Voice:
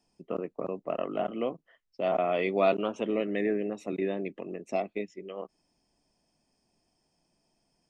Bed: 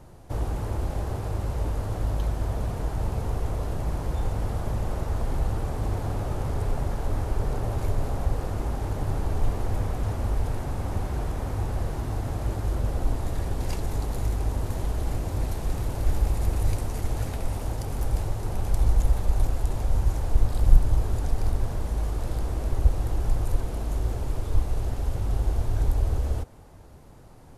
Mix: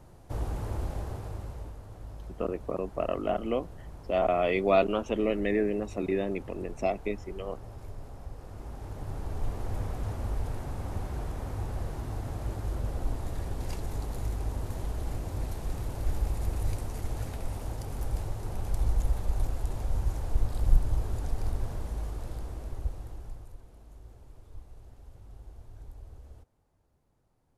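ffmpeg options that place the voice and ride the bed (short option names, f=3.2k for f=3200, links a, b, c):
-filter_complex "[0:a]adelay=2100,volume=1.5dB[a];[1:a]volume=6dB,afade=t=out:st=0.8:d=0.98:silence=0.251189,afade=t=in:st=8.36:d=1.45:silence=0.298538,afade=t=out:st=21.71:d=1.84:silence=0.141254[b];[a][b]amix=inputs=2:normalize=0"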